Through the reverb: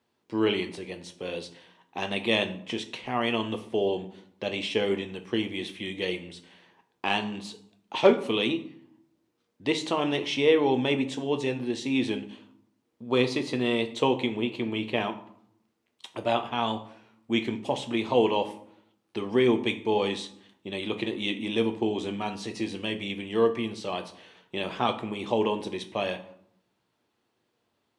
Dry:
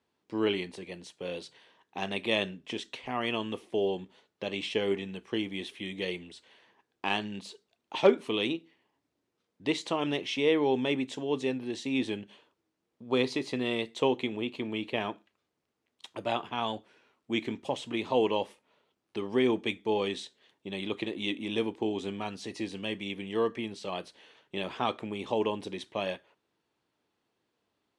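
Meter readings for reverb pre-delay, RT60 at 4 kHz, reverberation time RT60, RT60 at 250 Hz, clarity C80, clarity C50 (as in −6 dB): 8 ms, 0.45 s, 0.70 s, 1.0 s, 16.5 dB, 13.5 dB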